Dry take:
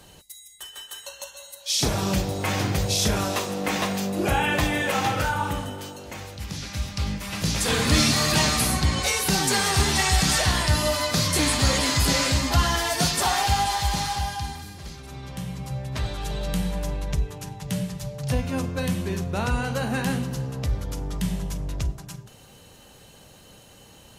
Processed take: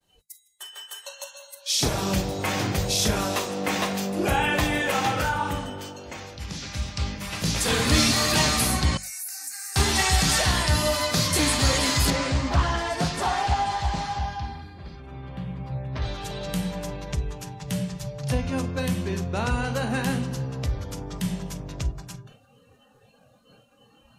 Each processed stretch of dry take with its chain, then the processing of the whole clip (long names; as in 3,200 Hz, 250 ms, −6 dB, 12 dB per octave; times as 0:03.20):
0:08.97–0:09.76: first difference + downward compressor 5 to 1, threshold −29 dBFS + phaser with its sweep stopped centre 670 Hz, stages 8
0:12.10–0:16.02: high-shelf EQ 2,800 Hz −11 dB + highs frequency-modulated by the lows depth 0.43 ms
whole clip: mains-hum notches 50/100/150/200 Hz; downward expander −46 dBFS; noise reduction from a noise print of the clip's start 16 dB